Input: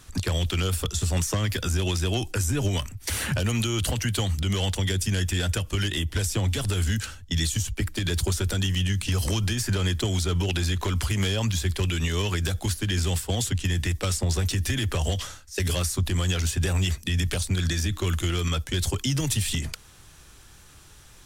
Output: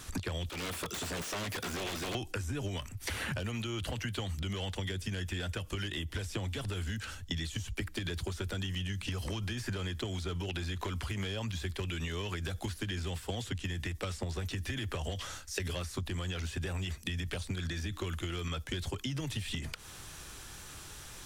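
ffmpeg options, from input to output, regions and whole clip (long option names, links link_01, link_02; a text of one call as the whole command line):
ffmpeg -i in.wav -filter_complex "[0:a]asettb=1/sr,asplit=3[link_01][link_02][link_03];[link_01]atrim=end=0.494[link_04];[link_02]atrim=start=0.49:end=2.15,asetpts=PTS-STARTPTS,afade=type=in:duration=0.004:curve=qsin,afade=type=out:start_time=1.656:duration=0.004:curve=qsin,highpass=170,aeval=exprs='0.0335*(abs(mod(val(0)/0.0335+3,4)-2)-1)':channel_layout=same,bandreject=frequency=840:width=18[link_05];[link_03]atrim=start=2.146[link_06];[link_04][link_05]acrossfade=duration=0.004:curve1=hsin:curve2=qsin[link_07];[link_07][link_06]acrossfade=duration=0.004:curve1=qsin:curve2=hsin,acrossover=split=3800[link_08][link_09];[link_09]acompressor=threshold=-42dB:ratio=4:attack=1:release=60[link_10];[link_08][link_10]amix=inputs=2:normalize=0,lowshelf=frequency=160:gain=-5,acompressor=threshold=-39dB:ratio=6,volume=4.5dB" out.wav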